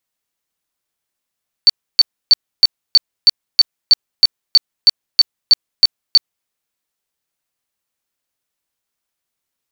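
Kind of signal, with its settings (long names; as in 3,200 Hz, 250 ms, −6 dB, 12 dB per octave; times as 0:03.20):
tone bursts 4,510 Hz, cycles 115, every 0.32 s, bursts 15, −3.5 dBFS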